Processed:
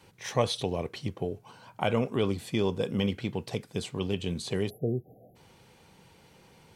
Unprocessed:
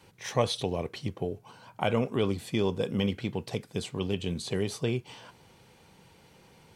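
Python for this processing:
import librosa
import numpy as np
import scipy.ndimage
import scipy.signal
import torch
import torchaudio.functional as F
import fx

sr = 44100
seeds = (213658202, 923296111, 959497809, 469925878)

y = fx.spec_erase(x, sr, start_s=4.7, length_s=0.66, low_hz=780.0, high_hz=11000.0)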